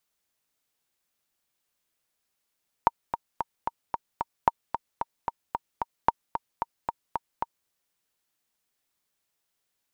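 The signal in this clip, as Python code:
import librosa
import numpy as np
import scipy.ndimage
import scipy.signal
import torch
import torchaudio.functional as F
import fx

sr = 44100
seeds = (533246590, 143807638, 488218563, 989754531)

y = fx.click_track(sr, bpm=224, beats=6, bars=3, hz=930.0, accent_db=9.0, level_db=-5.0)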